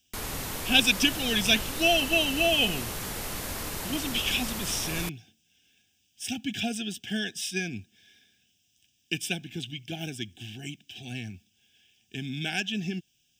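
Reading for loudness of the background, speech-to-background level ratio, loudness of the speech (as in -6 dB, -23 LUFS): -33.5 LUFS, 6.0 dB, -27.5 LUFS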